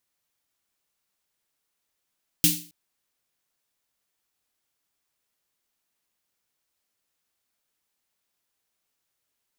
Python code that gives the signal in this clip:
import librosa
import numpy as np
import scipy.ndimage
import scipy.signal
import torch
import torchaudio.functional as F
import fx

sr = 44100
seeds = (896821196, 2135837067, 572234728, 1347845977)

y = fx.drum_snare(sr, seeds[0], length_s=0.27, hz=170.0, second_hz=300.0, noise_db=6.5, noise_from_hz=2700.0, decay_s=0.39, noise_decay_s=0.38)